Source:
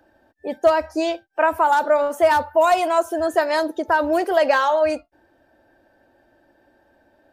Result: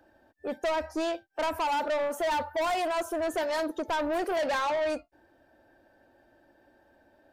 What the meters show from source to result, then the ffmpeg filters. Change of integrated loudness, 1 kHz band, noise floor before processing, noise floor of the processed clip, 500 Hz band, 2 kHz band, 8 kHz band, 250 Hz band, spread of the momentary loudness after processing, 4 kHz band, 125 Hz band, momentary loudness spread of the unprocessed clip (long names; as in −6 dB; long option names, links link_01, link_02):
−10.5 dB, −11.0 dB, −61 dBFS, −65 dBFS, −10.5 dB, −10.0 dB, −5.0 dB, −8.0 dB, 5 LU, −5.0 dB, can't be measured, 7 LU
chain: -af "asoftclip=type=tanh:threshold=-22dB,volume=-3.5dB"